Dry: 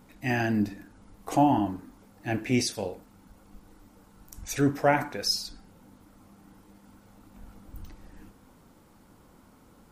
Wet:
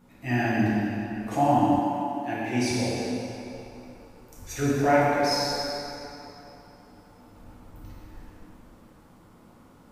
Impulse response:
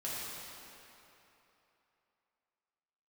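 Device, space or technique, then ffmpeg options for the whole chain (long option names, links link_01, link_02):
swimming-pool hall: -filter_complex "[1:a]atrim=start_sample=2205[link_01];[0:a][link_01]afir=irnorm=-1:irlink=0,highshelf=frequency=5100:gain=-4.5,asettb=1/sr,asplit=3[link_02][link_03][link_04];[link_02]atrim=end=1.794[link_05];[link_03]atrim=start=1.79:end=2.71,asetpts=PTS-STARTPTS,afade=type=in:duration=0.004:curve=qsin,afade=type=out:start_time=0.916:duration=0.004:curve=qsin,highpass=frequency=270:poles=1[link_06];[link_04]atrim=start=2.706[link_07];[link_05][link_06]acrossfade=duration=0.004:curve1=hsin:curve2=qsin[link_08];[link_08][link_07]acrossfade=duration=0.004:curve1=qsin:curve2=hsin"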